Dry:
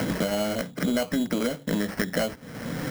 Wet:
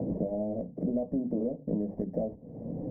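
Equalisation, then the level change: inverse Chebyshev low-pass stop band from 1.3 kHz, stop band 40 dB; hum notches 50/100/150/200/250 Hz; -3.5 dB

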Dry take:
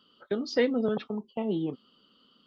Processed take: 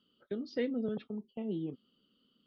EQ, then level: distance through air 220 m; peaking EQ 990 Hz -12.5 dB 1.5 oct; -4.5 dB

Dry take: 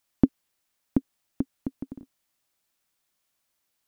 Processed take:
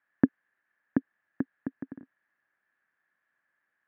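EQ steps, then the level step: high-pass 140 Hz 12 dB/octave; resonant low-pass 1.7 kHz, resonance Q 11; distance through air 150 m; -2.0 dB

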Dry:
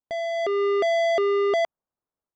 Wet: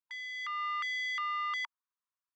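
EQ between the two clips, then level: brick-wall FIR high-pass 920 Hz; low-pass 3.3 kHz 6 dB/octave; -1.5 dB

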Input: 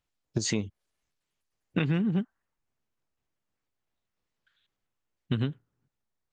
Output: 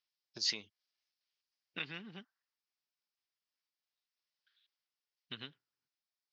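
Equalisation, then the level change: band-pass filter 5.2 kHz, Q 4.5; distance through air 270 m; +17.0 dB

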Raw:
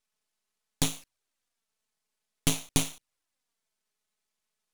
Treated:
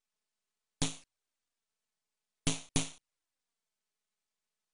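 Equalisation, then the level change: brick-wall FIR low-pass 10 kHz; -5.5 dB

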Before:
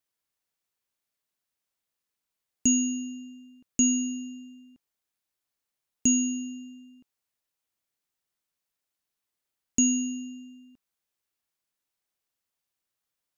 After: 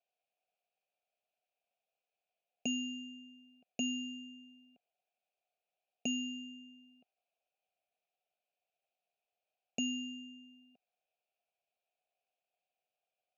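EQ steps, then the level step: vowel filter a; distance through air 110 m; static phaser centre 300 Hz, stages 6; +16.5 dB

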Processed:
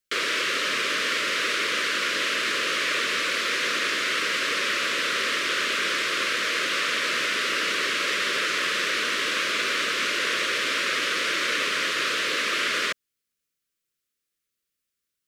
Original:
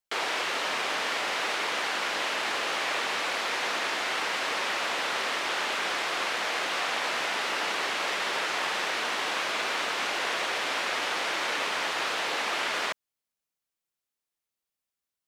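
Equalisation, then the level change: Butterworth band-stop 810 Hz, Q 1.2; +5.5 dB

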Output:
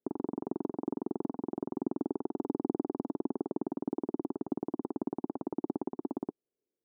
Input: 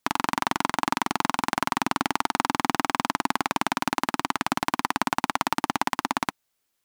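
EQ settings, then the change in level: high-pass 80 Hz 6 dB/octave; four-pole ladder low-pass 460 Hz, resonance 60%; bass shelf 170 Hz -7 dB; +6.0 dB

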